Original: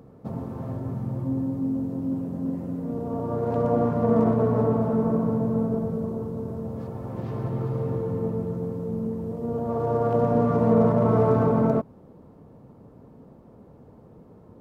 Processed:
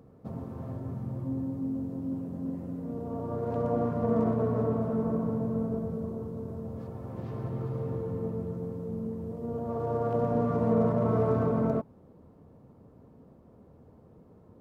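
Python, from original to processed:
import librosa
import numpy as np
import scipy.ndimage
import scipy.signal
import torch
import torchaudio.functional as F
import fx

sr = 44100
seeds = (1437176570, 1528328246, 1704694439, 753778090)

y = fx.peak_eq(x, sr, hz=81.0, db=7.0, octaves=0.22)
y = fx.notch(y, sr, hz=870.0, q=26.0)
y = F.gain(torch.from_numpy(y), -6.0).numpy()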